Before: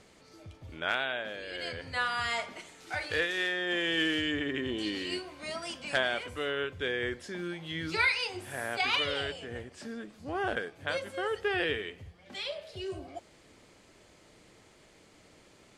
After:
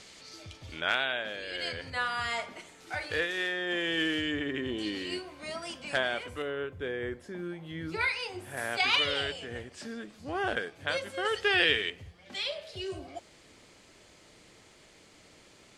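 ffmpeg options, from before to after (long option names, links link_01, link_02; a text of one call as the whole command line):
ffmpeg -i in.wav -af "asetnsamples=nb_out_samples=441:pad=0,asendcmd='0.81 equalizer g 4.5;1.9 equalizer g -1.5;6.42 equalizer g -11;8.01 equalizer g -4.5;8.57 equalizer g 4;11.25 equalizer g 12;11.9 equalizer g 4.5',equalizer=frequency=4700:width_type=o:width=2.8:gain=13.5" out.wav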